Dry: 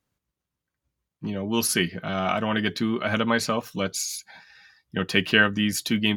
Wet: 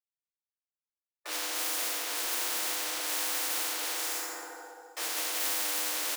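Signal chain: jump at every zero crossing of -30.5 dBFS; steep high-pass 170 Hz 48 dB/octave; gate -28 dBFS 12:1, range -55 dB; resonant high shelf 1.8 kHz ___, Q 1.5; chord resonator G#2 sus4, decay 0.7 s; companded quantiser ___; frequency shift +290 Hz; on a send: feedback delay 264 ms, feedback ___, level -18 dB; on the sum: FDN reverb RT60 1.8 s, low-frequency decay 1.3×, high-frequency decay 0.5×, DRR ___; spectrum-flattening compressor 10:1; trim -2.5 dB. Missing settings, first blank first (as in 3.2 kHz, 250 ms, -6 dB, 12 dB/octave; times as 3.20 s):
-10.5 dB, 4-bit, 36%, -8 dB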